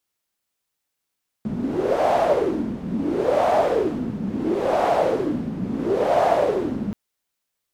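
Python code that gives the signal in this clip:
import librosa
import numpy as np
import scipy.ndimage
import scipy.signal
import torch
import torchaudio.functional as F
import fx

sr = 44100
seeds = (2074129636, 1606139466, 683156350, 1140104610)

y = fx.wind(sr, seeds[0], length_s=5.48, low_hz=200.0, high_hz=690.0, q=5.4, gusts=4, swing_db=8.0)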